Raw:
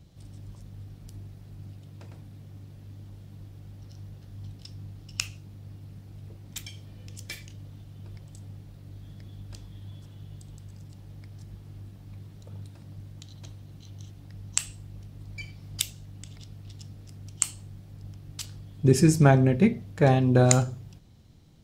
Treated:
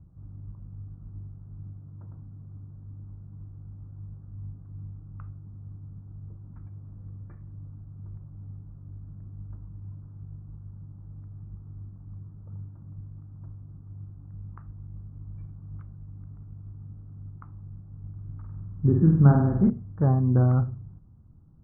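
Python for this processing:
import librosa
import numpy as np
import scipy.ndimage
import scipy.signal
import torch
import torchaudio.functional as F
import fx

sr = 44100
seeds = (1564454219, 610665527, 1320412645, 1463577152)

y = scipy.signal.sosfilt(scipy.signal.butter(8, 1300.0, 'lowpass', fs=sr, output='sos'), x)
y = fx.peak_eq(y, sr, hz=570.0, db=-14.0, octaves=2.0)
y = fx.room_flutter(y, sr, wall_m=8.4, rt60_s=0.79, at=(18.11, 19.7))
y = y * librosa.db_to_amplitude(3.5)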